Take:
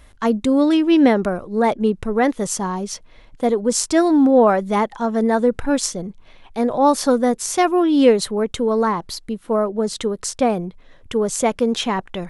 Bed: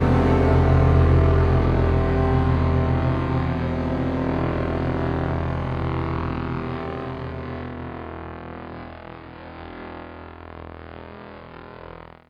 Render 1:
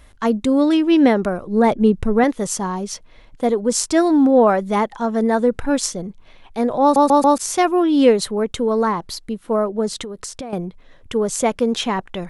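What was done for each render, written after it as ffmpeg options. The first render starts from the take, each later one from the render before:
-filter_complex "[0:a]asettb=1/sr,asplit=3[a][b][c];[a]atrim=end=1.474[d];[b]atrim=start=1.47:end=2.24,asetpts=PTS-STARTPTS,afade=t=in:d=0.004:c=qsin,afade=t=out:st=0.766:d=0.004:c=qsin,lowshelf=f=270:g=8[e];[c]atrim=start=2.236[f];[d][e]acrossfade=d=0.004:c1=hsin:c2=qsin[g];[g][f]acrossfade=d=0.004:c1=qsin:c2=hsin,asettb=1/sr,asplit=3[h][i][j];[h]atrim=end=10.024[k];[i]atrim=start=10.02:end=10.53,asetpts=PTS-STARTPTS,afade=t=in:d=0.004:c=qsin,afade=t=out:st=0.506:d=0.004:c=qsin,acompressor=threshold=-26dB:ratio=16:attack=3.2:release=140:knee=1:detection=peak[l];[j]atrim=start=10.526[m];[k][l]acrossfade=d=0.004:c1=hsin:c2=qsin[n];[n][m]acrossfade=d=0.004:c1=qsin:c2=hsin,asplit=5[o][p][q][r][s];[o]atrim=end=6.962[t];[p]atrim=start=6.818:end=6.962[u];[q]atrim=start=6.818:end=6.962[v];[r]atrim=start=6.818:end=6.962[w];[s]atrim=start=7.378[x];[t][u]acrossfade=d=0.004:c1=hsin:c2=hsin[y];[y][v]acrossfade=d=0.004:c1=hsin:c2=hsin[z];[z][w]acrossfade=d=0.004:c1=hsin:c2=hsin[aa];[aa][x]acrossfade=d=0.004:c1=hsin:c2=hsin"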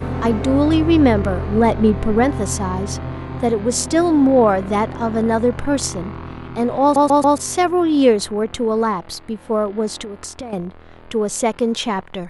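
-filter_complex "[1:a]volume=-6dB[a];[0:a][a]amix=inputs=2:normalize=0"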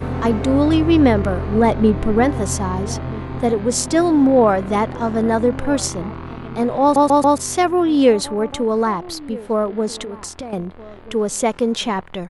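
-filter_complex "[0:a]asplit=2[a][b];[b]adelay=1283,volume=-19dB,highshelf=f=4k:g=-28.9[c];[a][c]amix=inputs=2:normalize=0"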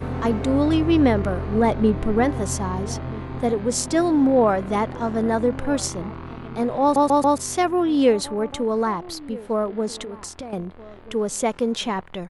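-af "volume=-4dB"

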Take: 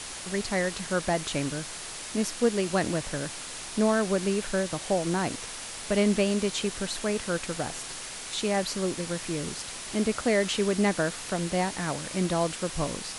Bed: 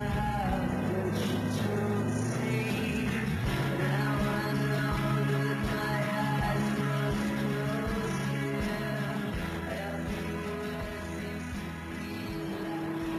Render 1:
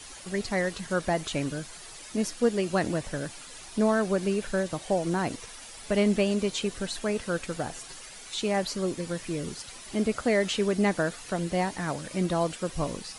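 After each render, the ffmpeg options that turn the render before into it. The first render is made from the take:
-af "afftdn=nr=10:nf=-39"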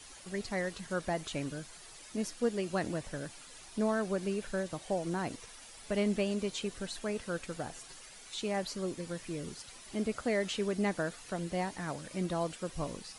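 -af "volume=-7dB"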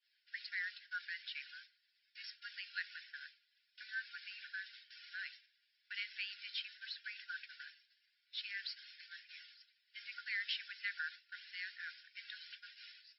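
-af "agate=range=-33dB:threshold=-37dB:ratio=3:detection=peak,afftfilt=real='re*between(b*sr/4096,1400,5500)':imag='im*between(b*sr/4096,1400,5500)':win_size=4096:overlap=0.75"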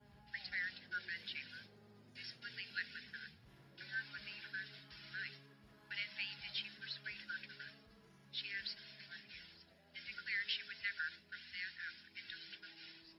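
-filter_complex "[1:a]volume=-34dB[a];[0:a][a]amix=inputs=2:normalize=0"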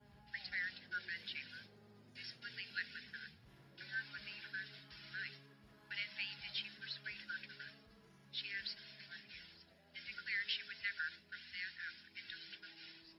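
-af anull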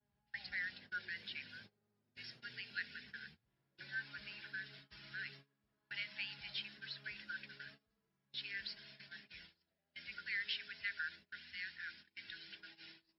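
-af "agate=range=-20dB:threshold=-57dB:ratio=16:detection=peak,highshelf=f=9.6k:g=-12"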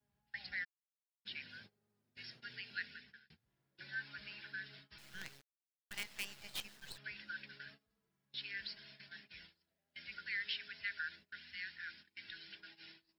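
-filter_complex "[0:a]asplit=3[a][b][c];[a]afade=t=out:st=0.63:d=0.02[d];[b]acrusher=bits=2:mix=0:aa=0.5,afade=t=in:st=0.63:d=0.02,afade=t=out:st=1.25:d=0.02[e];[c]afade=t=in:st=1.25:d=0.02[f];[d][e][f]amix=inputs=3:normalize=0,asettb=1/sr,asplit=3[g][h][i];[g]atrim=end=4.984[j];[h]atrim=start=4.98:end=6.98,asetpts=PTS-STARTPTS,afade=t=in:d=0.004:c=qsin,afade=t=out:st=1.996:d=0.004:c=qsin,acrusher=bits=7:dc=4:mix=0:aa=0.000001[k];[i]atrim=start=6.976[l];[j][k]acrossfade=d=0.004:c1=hsin:c2=qsin[m];[m][l]acrossfade=d=0.004:c1=qsin:c2=hsin,asplit=2[n][o];[n]atrim=end=3.3,asetpts=PTS-STARTPTS,afade=t=out:st=2.85:d=0.45[p];[o]atrim=start=3.3,asetpts=PTS-STARTPTS,afade=t=in:d=0.004:c=hsin[q];[p][q]concat=n=2:v=0:a=1"

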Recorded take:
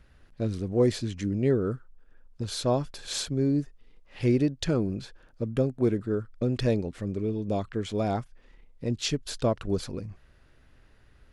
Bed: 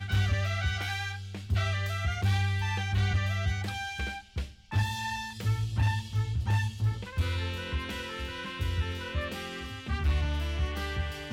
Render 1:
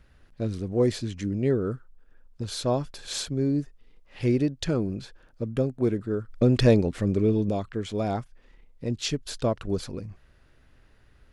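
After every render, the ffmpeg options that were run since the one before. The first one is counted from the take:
-filter_complex "[0:a]asplit=3[a][b][c];[a]afade=t=out:st=6.28:d=0.02[d];[b]acontrast=85,afade=t=in:st=6.28:d=0.02,afade=t=out:st=7.49:d=0.02[e];[c]afade=t=in:st=7.49:d=0.02[f];[d][e][f]amix=inputs=3:normalize=0"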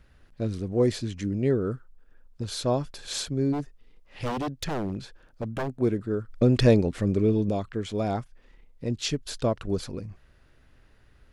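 -filter_complex "[0:a]asplit=3[a][b][c];[a]afade=t=out:st=3.52:d=0.02[d];[b]aeval=exprs='0.0668*(abs(mod(val(0)/0.0668+3,4)-2)-1)':c=same,afade=t=in:st=3.52:d=0.02,afade=t=out:st=5.67:d=0.02[e];[c]afade=t=in:st=5.67:d=0.02[f];[d][e][f]amix=inputs=3:normalize=0"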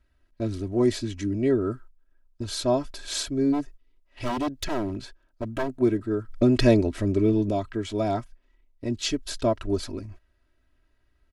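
-af "agate=range=-13dB:threshold=-44dB:ratio=16:detection=peak,aecho=1:1:3.1:0.79"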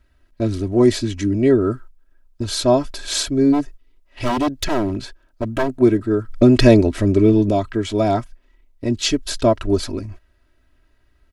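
-af "volume=8dB,alimiter=limit=-1dB:level=0:latency=1"

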